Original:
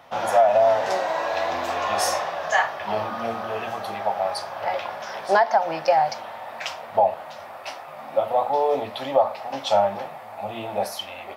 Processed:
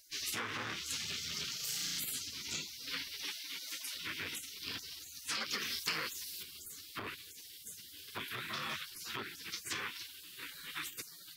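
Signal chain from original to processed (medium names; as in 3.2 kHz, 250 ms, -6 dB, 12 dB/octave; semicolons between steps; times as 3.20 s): spectral gate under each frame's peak -30 dB weak; 1.56–2.00 s: flutter echo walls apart 5.9 m, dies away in 1.3 s; compression 6:1, threshold -43 dBFS, peak gain reduction 9.5 dB; 3.24–3.95 s: high-pass 210 Hz 24 dB/octave; 5.40–6.43 s: treble shelf 4.1 kHz +9.5 dB; transformer saturation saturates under 3.9 kHz; trim +9 dB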